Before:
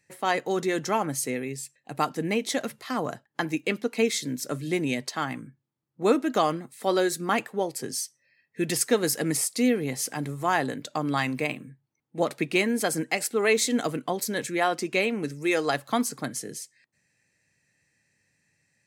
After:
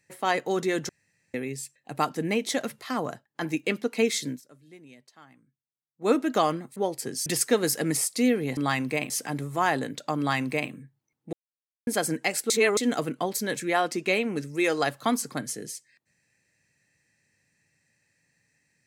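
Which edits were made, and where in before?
0.89–1.34 room tone
2.93–3.41 fade out, to -6.5 dB
4.28–6.12 dip -23 dB, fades 0.14 s
6.76–7.53 cut
8.03–8.66 cut
11.05–11.58 copy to 9.97
12.2–12.74 mute
13.37–13.64 reverse

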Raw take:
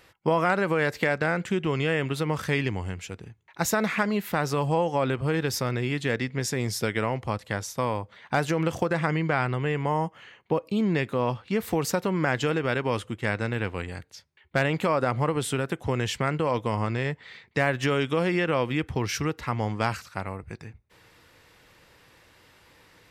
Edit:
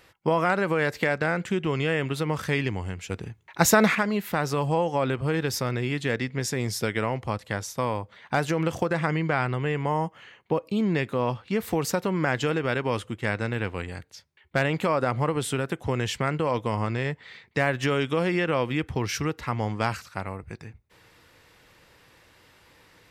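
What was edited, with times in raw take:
3.1–3.95 gain +6.5 dB

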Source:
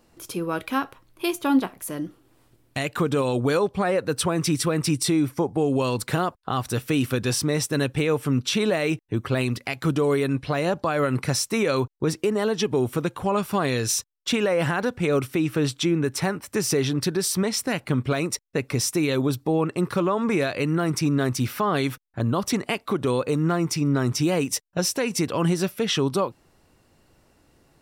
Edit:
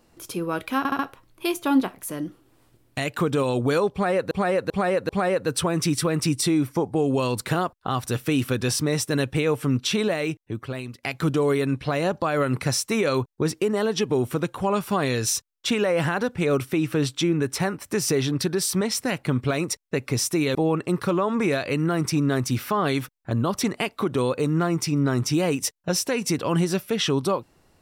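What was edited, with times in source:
0.78 stutter 0.07 s, 4 plays
3.71–4.1 loop, 4 plays
8.51–9.65 fade out, to -14.5 dB
19.17–19.44 cut

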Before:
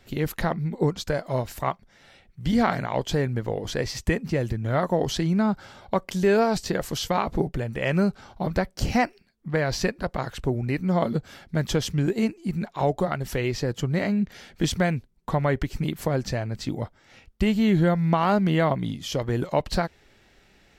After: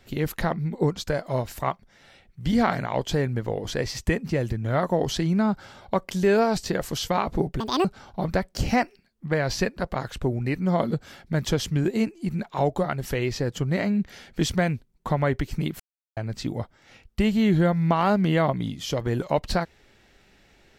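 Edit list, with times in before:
7.6–8.07 speed 190%
16.02–16.39 mute

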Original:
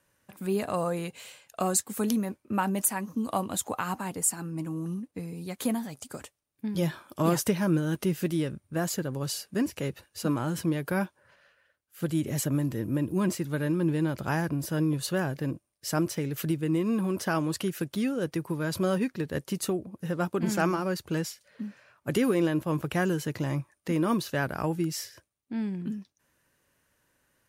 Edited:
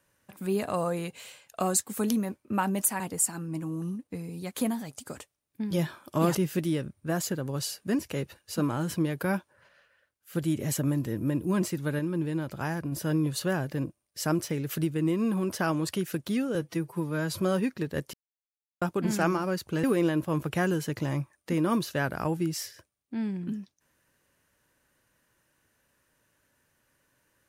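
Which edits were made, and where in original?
3–4.04 cut
7.39–8.02 cut
13.66–14.59 gain -3.5 dB
18.22–18.79 stretch 1.5×
19.52–20.2 mute
21.22–22.22 cut

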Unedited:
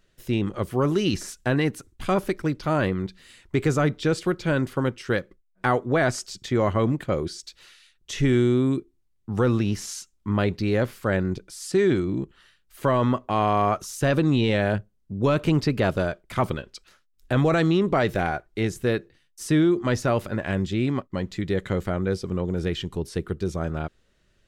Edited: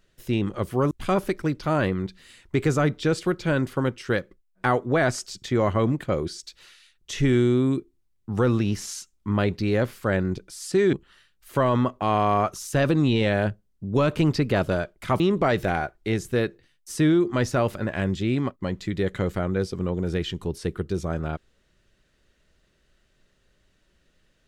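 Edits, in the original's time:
0.91–1.91 cut
11.93–12.21 cut
16.48–17.71 cut

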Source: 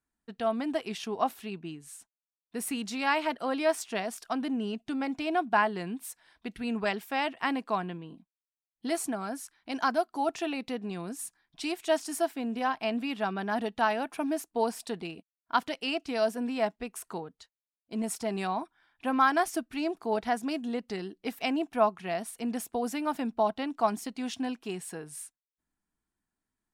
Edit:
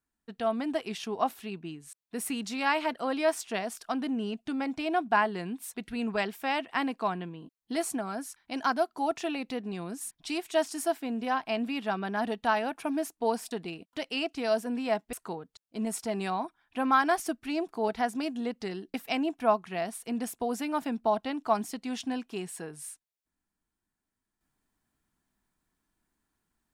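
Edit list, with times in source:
shrink pauses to 25%

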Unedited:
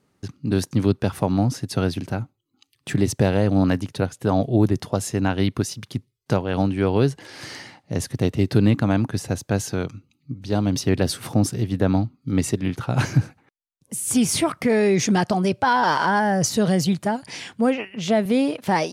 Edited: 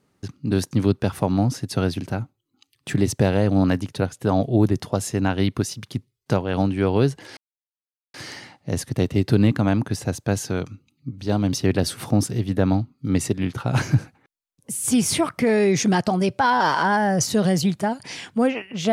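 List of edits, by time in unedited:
7.37 insert silence 0.77 s

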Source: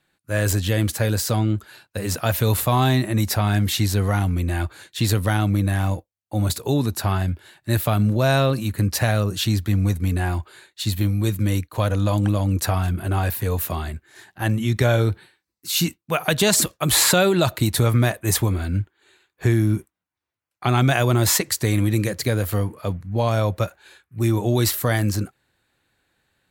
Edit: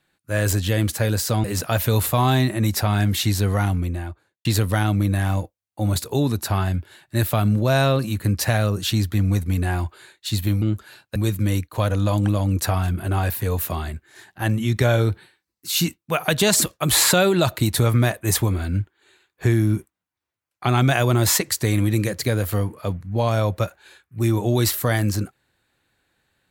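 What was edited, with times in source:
1.44–1.98 move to 11.16
4.17–4.99 studio fade out

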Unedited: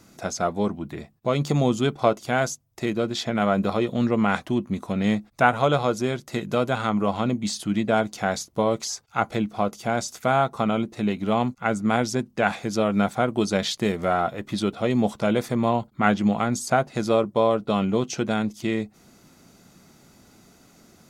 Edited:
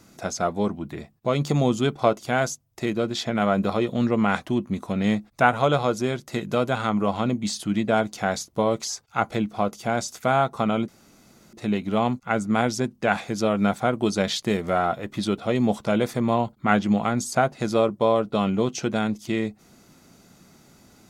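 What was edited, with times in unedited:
10.88 insert room tone 0.65 s

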